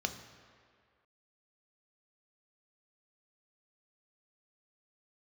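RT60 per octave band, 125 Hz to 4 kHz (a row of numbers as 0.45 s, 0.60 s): 1.6 s, 1.7 s, 2.0 s, 2.1 s, 2.0 s, 1.5 s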